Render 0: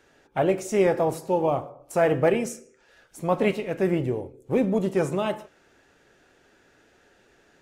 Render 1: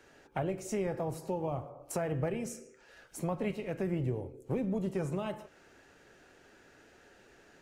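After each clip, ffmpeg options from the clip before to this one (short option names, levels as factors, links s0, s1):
-filter_complex "[0:a]acrossover=split=140[s0][s1];[s1]acompressor=threshold=0.0178:ratio=4[s2];[s0][s2]amix=inputs=2:normalize=0,bandreject=f=3500:w=18"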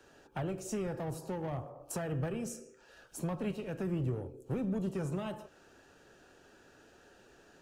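-filter_complex "[0:a]equalizer=f=2100:t=o:w=0.23:g=-13,acrossover=split=310|1100[s0][s1][s2];[s1]asoftclip=type=tanh:threshold=0.0106[s3];[s0][s3][s2]amix=inputs=3:normalize=0"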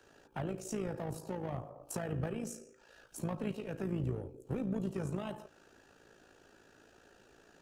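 -af "tremolo=f=55:d=0.621,volume=1.12"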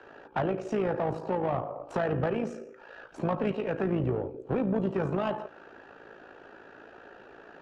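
-filter_complex "[0:a]asplit=2[s0][s1];[s1]highpass=f=720:p=1,volume=6.31,asoftclip=type=tanh:threshold=0.0708[s2];[s0][s2]amix=inputs=2:normalize=0,lowpass=f=2700:p=1,volume=0.501,adynamicsmooth=sensitivity=2:basefreq=2300,volume=2.24"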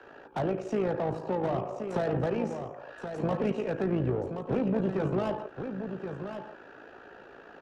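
-filter_complex "[0:a]acrossover=split=150|730[s0][s1][s2];[s2]asoftclip=type=tanh:threshold=0.0168[s3];[s0][s1][s3]amix=inputs=3:normalize=0,aecho=1:1:1075:0.398"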